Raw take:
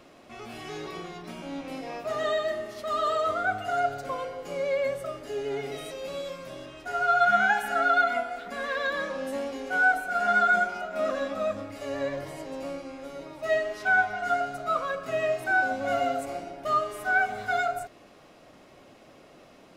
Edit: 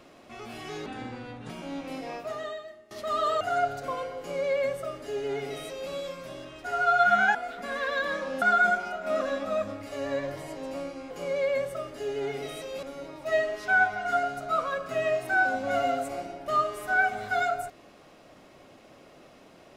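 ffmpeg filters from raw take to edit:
ffmpeg -i in.wav -filter_complex "[0:a]asplit=9[link_01][link_02][link_03][link_04][link_05][link_06][link_07][link_08][link_09];[link_01]atrim=end=0.864[link_10];[link_02]atrim=start=0.86:end=1.3,asetpts=PTS-STARTPTS,asetrate=30429,aresample=44100[link_11];[link_03]atrim=start=1.296:end=2.71,asetpts=PTS-STARTPTS,afade=type=out:start_time=0.634:duration=0.78:curve=qua:silence=0.0944061[link_12];[link_04]atrim=start=2.71:end=3.212,asetpts=PTS-STARTPTS,afade=type=in:duration=0.004:curve=hsin:silence=0.0944061[link_13];[link_05]atrim=start=3.618:end=7.562[link_14];[link_06]atrim=start=8.228:end=9.302[link_15];[link_07]atrim=start=10.308:end=13.002[link_16];[link_08]atrim=start=4.398:end=6.122[link_17];[link_09]atrim=start=12.998[link_18];[link_10][link_11]acrossfade=duration=0.004:curve1=hsin:curve2=hsin[link_19];[link_12][link_13]concat=n=2:v=0:a=1[link_20];[link_19][link_20]acrossfade=duration=0.004:curve1=hsin:curve2=hsin[link_21];[link_21][link_14]acrossfade=duration=0.004:curve1=hsin:curve2=hsin[link_22];[link_22][link_15]acrossfade=duration=0.004:curve1=hsin:curve2=hsin[link_23];[link_23][link_16]acrossfade=duration=0.004:curve1=hsin:curve2=hsin[link_24];[link_24][link_17]acrossfade=duration=0.004:curve1=hsin:curve2=hsin[link_25];[link_25][link_18]acrossfade=duration=0.004:curve1=hsin:curve2=hsin" out.wav

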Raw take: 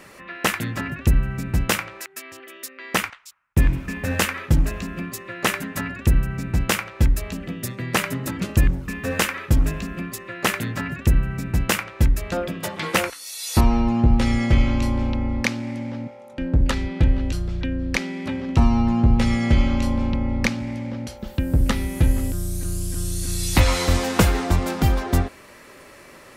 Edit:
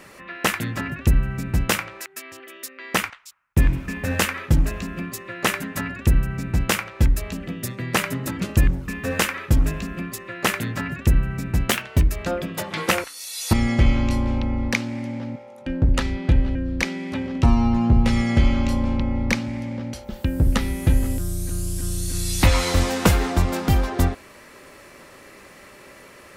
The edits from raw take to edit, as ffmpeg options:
ffmpeg -i in.wav -filter_complex "[0:a]asplit=5[link_01][link_02][link_03][link_04][link_05];[link_01]atrim=end=11.704[link_06];[link_02]atrim=start=11.7:end=12.14,asetpts=PTS-STARTPTS,asetrate=50715,aresample=44100,atrim=end_sample=16873,asetpts=PTS-STARTPTS[link_07];[link_03]atrim=start=12.136:end=13.592[link_08];[link_04]atrim=start=14.248:end=17.272[link_09];[link_05]atrim=start=17.688[link_10];[link_06][link_07]acrossfade=duration=0.004:curve1=hsin:curve2=hsin[link_11];[link_11][link_08]acrossfade=duration=0.004:curve1=hsin:curve2=hsin[link_12];[link_12][link_09]acrossfade=duration=0.004:curve1=hsin:curve2=hsin[link_13];[link_13][link_10]acrossfade=duration=0.004:curve1=hsin:curve2=hsin" out.wav

